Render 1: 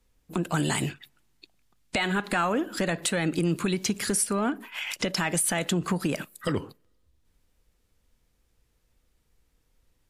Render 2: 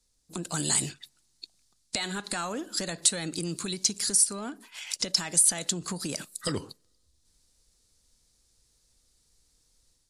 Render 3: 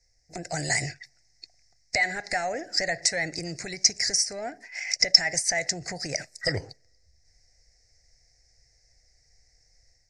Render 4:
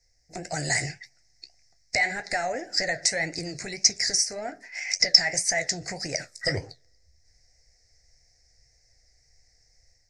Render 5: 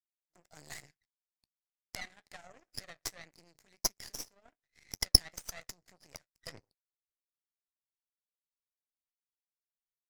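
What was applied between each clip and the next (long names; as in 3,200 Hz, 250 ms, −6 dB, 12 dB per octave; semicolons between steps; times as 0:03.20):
flat-topped bell 6,300 Hz +15.5 dB; automatic gain control gain up to 5.5 dB; level −8.5 dB
drawn EQ curve 130 Hz 0 dB, 200 Hz −15 dB, 390 Hz −8 dB, 730 Hz +6 dB, 1,100 Hz −24 dB, 2,000 Hz +11 dB, 3,300 Hz −27 dB, 5,300 Hz +5 dB, 11,000 Hz −28 dB; level +6.5 dB
flanger 1.8 Hz, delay 9.8 ms, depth 7.9 ms, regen −54%; level +4.5 dB
gain on one half-wave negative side −7 dB; power curve on the samples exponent 2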